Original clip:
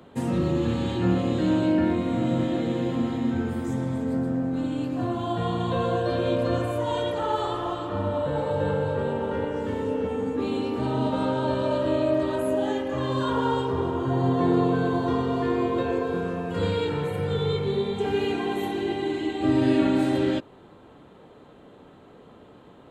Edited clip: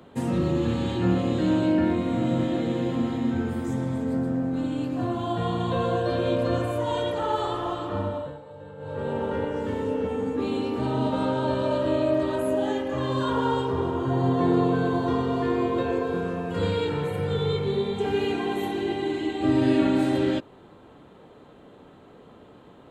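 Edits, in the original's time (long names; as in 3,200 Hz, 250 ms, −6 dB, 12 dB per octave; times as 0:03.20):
0:07.98–0:09.18: duck −17.5 dB, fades 0.41 s linear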